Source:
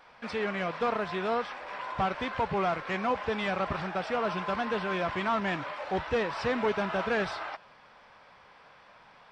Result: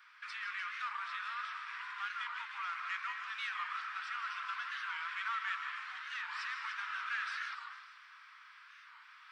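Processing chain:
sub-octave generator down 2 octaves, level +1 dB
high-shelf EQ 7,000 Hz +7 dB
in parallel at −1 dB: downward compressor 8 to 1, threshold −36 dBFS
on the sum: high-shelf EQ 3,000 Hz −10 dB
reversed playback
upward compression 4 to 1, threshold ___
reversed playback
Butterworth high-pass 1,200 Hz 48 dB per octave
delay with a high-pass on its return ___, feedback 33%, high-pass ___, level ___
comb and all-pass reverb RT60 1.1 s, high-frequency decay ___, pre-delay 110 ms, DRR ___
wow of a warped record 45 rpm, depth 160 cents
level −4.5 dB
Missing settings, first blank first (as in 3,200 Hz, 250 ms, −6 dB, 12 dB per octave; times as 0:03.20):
−44 dBFS, 297 ms, 3,700 Hz, −9 dB, 0.4×, 4.5 dB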